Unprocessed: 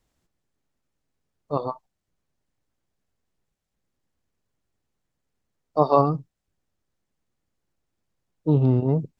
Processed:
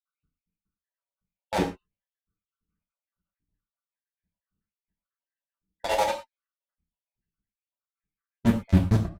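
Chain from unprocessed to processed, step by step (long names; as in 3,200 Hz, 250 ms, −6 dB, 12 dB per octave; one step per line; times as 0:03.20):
time-frequency cells dropped at random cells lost 82%
low-pass that shuts in the quiet parts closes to 1,900 Hz, open at −23.5 dBFS
octave-band graphic EQ 125/250/500/1,000/2,000/4,000 Hz +5/+8/−5/−10/+6/+6 dB
in parallel at −4.5 dB: fuzz pedal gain 44 dB, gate −38 dBFS
on the sum: notch comb filter 170 Hz
pitch shifter −5 semitones
on a send at −1 dB: convolution reverb, pre-delay 3 ms
on the sum: level −2.5 dB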